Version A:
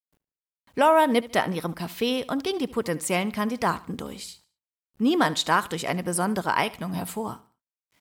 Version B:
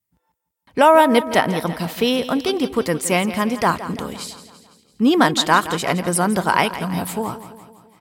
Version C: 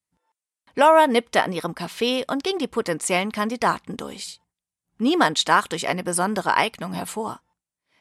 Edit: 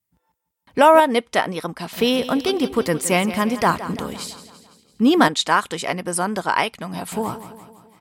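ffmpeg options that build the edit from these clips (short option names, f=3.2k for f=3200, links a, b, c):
-filter_complex "[2:a]asplit=2[a][b];[1:a]asplit=3[c][d][e];[c]atrim=end=1.002[f];[a]atrim=start=0.998:end=1.932[g];[d]atrim=start=1.928:end=5.282[h];[b]atrim=start=5.278:end=7.122[i];[e]atrim=start=7.118[j];[f][g]acrossfade=d=0.004:c1=hsin:c2=hsin[k];[k][h]acrossfade=d=0.004:c1=hsin:c2=hsin[l];[l][i]acrossfade=d=0.004:c1=hsin:c2=hsin[m];[m][j]acrossfade=d=0.004:c1=hsin:c2=hsin"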